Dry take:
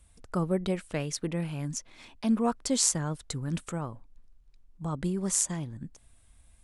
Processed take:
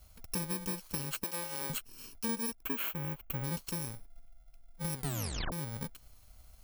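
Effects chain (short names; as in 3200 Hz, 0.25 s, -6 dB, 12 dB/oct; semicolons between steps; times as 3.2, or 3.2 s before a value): FFT order left unsorted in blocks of 64 samples; 1.24–1.7 HPF 410 Hz 12 dB/oct; 2.63–3.44 band shelf 6400 Hz -15.5 dB; 4.96 tape stop 0.56 s; compressor 6:1, threshold -35 dBFS, peak gain reduction 13 dB; gain +2 dB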